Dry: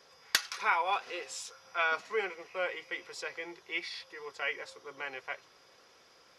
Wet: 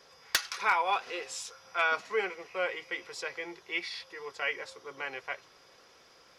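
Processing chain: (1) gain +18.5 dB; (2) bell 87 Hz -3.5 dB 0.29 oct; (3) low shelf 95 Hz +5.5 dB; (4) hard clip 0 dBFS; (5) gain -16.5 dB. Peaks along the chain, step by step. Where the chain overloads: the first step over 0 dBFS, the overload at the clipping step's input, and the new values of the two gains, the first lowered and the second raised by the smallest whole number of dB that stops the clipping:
+7.0, +7.0, +7.0, 0.0, -16.5 dBFS; step 1, 7.0 dB; step 1 +11.5 dB, step 5 -9.5 dB

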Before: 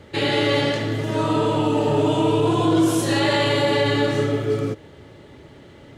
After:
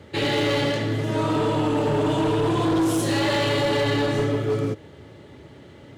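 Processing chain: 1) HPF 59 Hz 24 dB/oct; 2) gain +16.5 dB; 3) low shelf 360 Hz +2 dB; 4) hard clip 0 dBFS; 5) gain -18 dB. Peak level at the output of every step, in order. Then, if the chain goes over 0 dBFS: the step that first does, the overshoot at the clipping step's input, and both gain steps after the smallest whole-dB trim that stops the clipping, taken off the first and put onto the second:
-7.5, +9.0, +9.5, 0.0, -18.0 dBFS; step 2, 9.5 dB; step 2 +6.5 dB, step 5 -8 dB

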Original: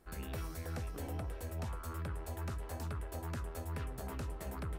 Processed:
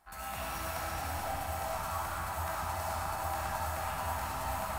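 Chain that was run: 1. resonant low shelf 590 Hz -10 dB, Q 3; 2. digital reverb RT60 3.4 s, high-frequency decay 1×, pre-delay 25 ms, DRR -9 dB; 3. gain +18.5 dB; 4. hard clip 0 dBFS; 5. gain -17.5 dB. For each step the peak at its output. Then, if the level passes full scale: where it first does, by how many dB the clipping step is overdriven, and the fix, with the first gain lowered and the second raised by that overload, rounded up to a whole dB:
-29.0, -23.5, -5.0, -5.0, -22.5 dBFS; no overload

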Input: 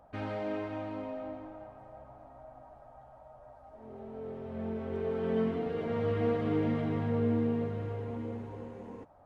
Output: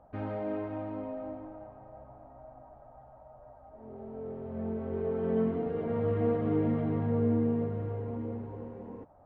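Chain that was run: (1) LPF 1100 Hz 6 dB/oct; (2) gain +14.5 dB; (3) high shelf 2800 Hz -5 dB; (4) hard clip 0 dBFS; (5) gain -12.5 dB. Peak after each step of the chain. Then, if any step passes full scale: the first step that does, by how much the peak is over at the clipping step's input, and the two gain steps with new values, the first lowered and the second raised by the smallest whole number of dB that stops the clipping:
-19.5, -5.0, -5.0, -5.0, -17.5 dBFS; no overload

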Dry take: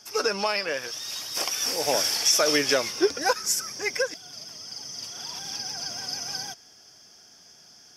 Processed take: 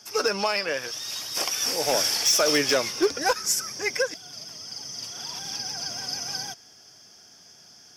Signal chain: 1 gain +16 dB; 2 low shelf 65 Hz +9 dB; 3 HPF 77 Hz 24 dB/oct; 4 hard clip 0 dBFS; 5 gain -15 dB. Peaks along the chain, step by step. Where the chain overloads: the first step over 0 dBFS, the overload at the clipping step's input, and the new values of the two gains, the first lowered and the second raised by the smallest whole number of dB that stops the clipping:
+7.5, +7.5, +7.5, 0.0, -15.0 dBFS; step 1, 7.5 dB; step 1 +8 dB, step 5 -7 dB

